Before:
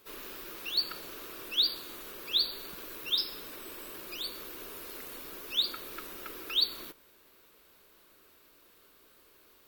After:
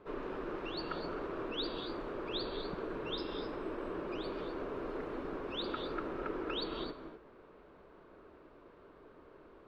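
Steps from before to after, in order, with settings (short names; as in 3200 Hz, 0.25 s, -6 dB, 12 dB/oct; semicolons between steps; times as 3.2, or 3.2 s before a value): LPF 1000 Hz 12 dB/oct; non-linear reverb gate 0.28 s rising, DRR 7 dB; gain +9.5 dB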